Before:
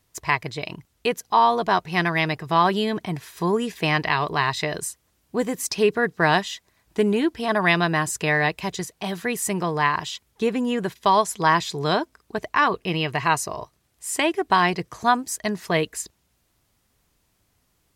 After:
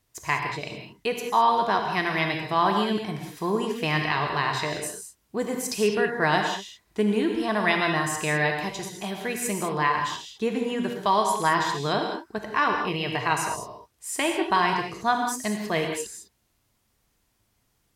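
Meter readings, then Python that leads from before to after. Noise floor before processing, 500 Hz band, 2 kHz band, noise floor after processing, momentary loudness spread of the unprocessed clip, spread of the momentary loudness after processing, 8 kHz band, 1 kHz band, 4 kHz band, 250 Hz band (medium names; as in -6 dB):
-69 dBFS, -2.5 dB, -2.5 dB, -71 dBFS, 12 LU, 11 LU, -2.5 dB, -2.5 dB, -2.5 dB, -2.5 dB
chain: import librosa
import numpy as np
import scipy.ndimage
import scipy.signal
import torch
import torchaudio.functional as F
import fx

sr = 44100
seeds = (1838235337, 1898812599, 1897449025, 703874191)

y = fx.rev_gated(x, sr, seeds[0], gate_ms=230, shape='flat', drr_db=2.5)
y = y * librosa.db_to_amplitude(-4.5)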